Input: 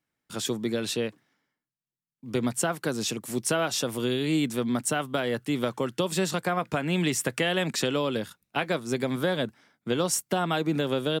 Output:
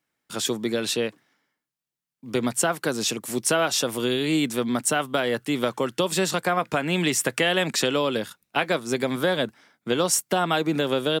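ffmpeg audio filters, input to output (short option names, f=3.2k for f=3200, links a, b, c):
-af "lowshelf=f=200:g=-8.5,volume=5dB"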